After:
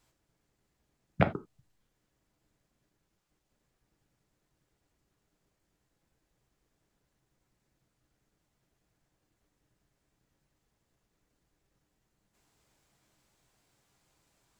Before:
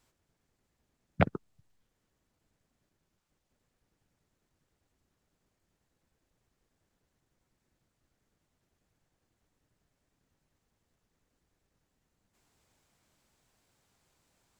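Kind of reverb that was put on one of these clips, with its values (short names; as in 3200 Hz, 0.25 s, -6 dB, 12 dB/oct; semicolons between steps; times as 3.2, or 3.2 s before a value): non-linear reverb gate 0.11 s falling, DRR 7.5 dB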